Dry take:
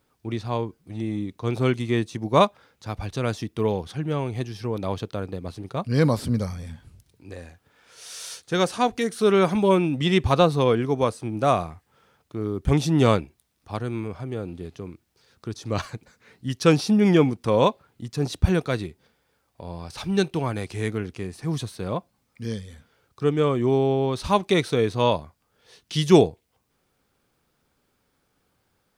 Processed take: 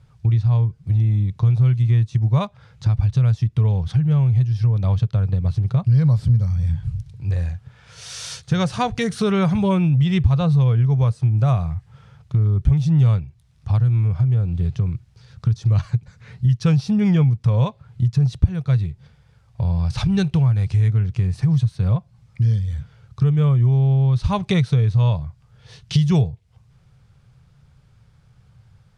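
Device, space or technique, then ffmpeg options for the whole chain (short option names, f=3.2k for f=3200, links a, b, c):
jukebox: -af "lowpass=7.2k,lowshelf=f=190:t=q:w=3:g=14,acompressor=threshold=-23dB:ratio=4,volume=6dB"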